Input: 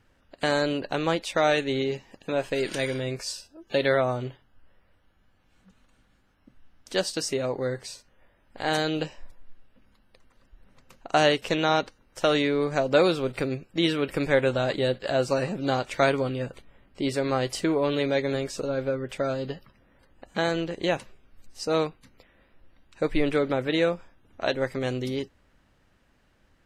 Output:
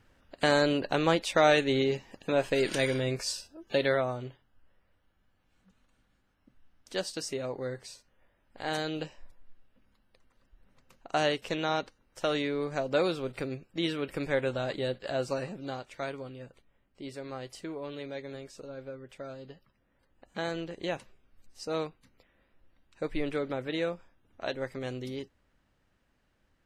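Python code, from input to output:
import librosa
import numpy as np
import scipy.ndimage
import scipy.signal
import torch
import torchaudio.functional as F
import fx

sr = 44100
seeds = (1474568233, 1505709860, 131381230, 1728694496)

y = fx.gain(x, sr, db=fx.line((3.51, 0.0), (4.16, -7.0), (15.31, -7.0), (15.91, -14.5), (19.49, -14.5), (20.48, -8.0)))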